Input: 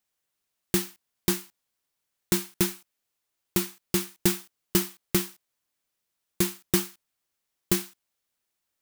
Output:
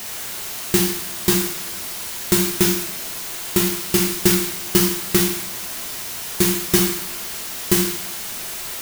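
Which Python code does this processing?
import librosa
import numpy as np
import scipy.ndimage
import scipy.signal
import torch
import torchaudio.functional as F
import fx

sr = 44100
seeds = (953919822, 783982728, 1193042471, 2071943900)

y = x + 0.5 * 10.0 ** (-31.5 / 20.0) * np.sign(x)
y = fx.rev_double_slope(y, sr, seeds[0], early_s=0.67, late_s=1.9, knee_db=-18, drr_db=-1.0)
y = F.gain(torch.from_numpy(y), 4.5).numpy()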